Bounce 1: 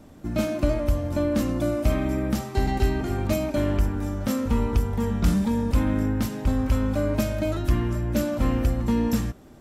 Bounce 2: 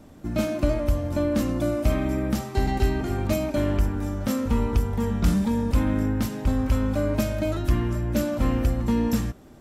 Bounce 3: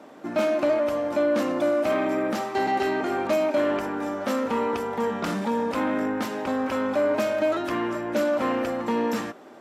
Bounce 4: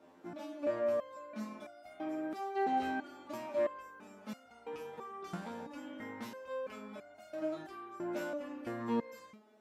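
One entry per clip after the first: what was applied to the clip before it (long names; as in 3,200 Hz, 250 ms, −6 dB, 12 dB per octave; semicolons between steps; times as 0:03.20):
no processing that can be heard
mid-hump overdrive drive 19 dB, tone 1,300 Hz, clips at −9.5 dBFS; high-pass filter 290 Hz 12 dB per octave; level −1 dB
low-shelf EQ 140 Hz +5.5 dB; step-sequenced resonator 3 Hz 87–710 Hz; level −5 dB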